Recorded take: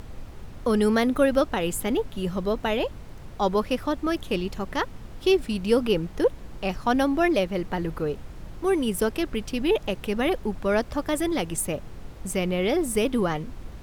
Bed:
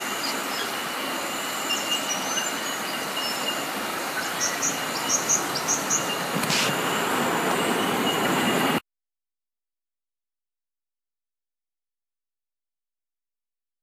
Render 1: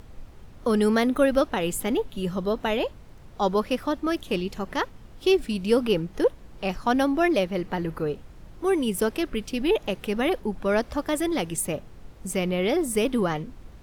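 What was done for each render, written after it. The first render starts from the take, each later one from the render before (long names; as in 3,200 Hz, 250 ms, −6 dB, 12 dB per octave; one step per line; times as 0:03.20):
noise reduction from a noise print 6 dB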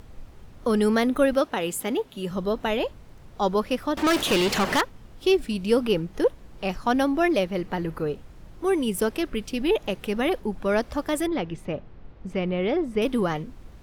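0:01.33–0:02.31: high-pass filter 210 Hz 6 dB per octave
0:03.97–0:04.81: mid-hump overdrive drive 32 dB, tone 7,400 Hz, clips at −14.5 dBFS
0:11.27–0:13.02: high-frequency loss of the air 250 metres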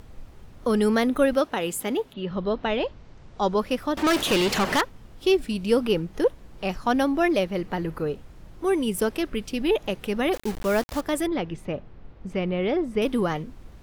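0:02.12–0:03.58: low-pass filter 3,600 Hz → 8,800 Hz 24 dB per octave
0:10.33–0:11.01: bit-depth reduction 6 bits, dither none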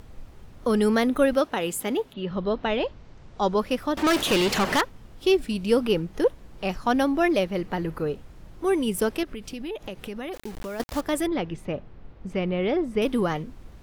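0:09.23–0:10.80: downward compressor 4 to 1, threshold −32 dBFS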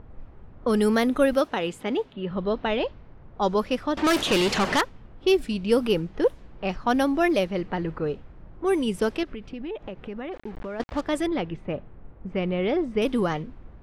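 low-pass that shuts in the quiet parts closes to 1,300 Hz, open at −17.5 dBFS
high-shelf EQ 12,000 Hz +3.5 dB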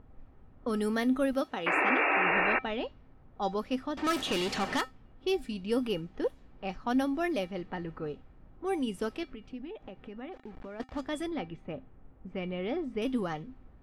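0:01.66–0:02.59: sound drawn into the spectrogram noise 280–2,800 Hz −18 dBFS
tuned comb filter 260 Hz, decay 0.18 s, harmonics odd, mix 70%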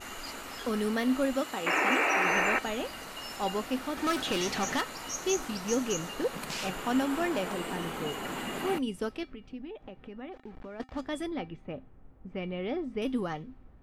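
mix in bed −13.5 dB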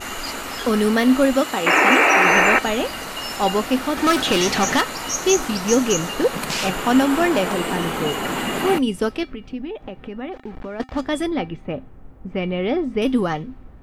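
level +12 dB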